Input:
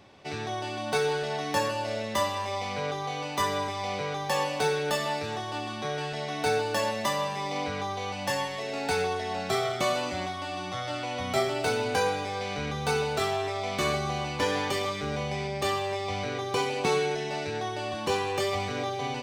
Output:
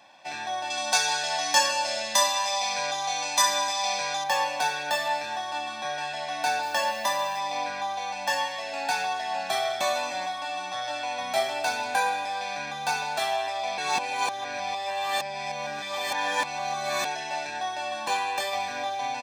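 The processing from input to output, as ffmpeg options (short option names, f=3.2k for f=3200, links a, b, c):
-filter_complex "[0:a]asettb=1/sr,asplit=3[a][b][c];[a]atrim=end=0.704[d];[b]atrim=start=0.7:end=4.24,asetpts=PTS-STARTPTS,afade=t=in:d=0.004:c=qsin,afade=t=out:st=3.536:d=0.004:c=qsin,equalizer=f=6.7k:t=o:w=1.9:g=12.5[e];[c]atrim=start=4.236[f];[d][e]acrossfade=d=0.004:c1=hsin:c2=qsin[g];[g][f]acrossfade=d=0.004:c1=qsin:c2=hsin,asettb=1/sr,asplit=3[h][i][j];[h]atrim=end=6.634[k];[i]atrim=start=6.63:end=7.39,asetpts=PTS-STARTPTS,afade=t=in:d=0.004:c=qsin,afade=t=out:st=0.756:d=0.004:c=qsin,acrusher=bits=7:mix=0:aa=0.5[l];[j]atrim=start=7.386[m];[k][l]acrossfade=d=0.004:c1=hsin:c2=qsin[n];[n][m]acrossfade=d=0.004:c1=qsin:c2=hsin,asplit=3[o][p][q];[o]atrim=end=13.782[r];[p]atrim=start=13.778:end=17.052,asetpts=PTS-STARTPTS,areverse[s];[q]atrim=start=17.048[t];[r][s]acrossfade=d=0.004:c1=hsin:c2=hsin[u];[u][t]acrossfade=d=0.004:c1=hsin:c2=hsin,highpass=450,aecho=1:1:1.2:0.9"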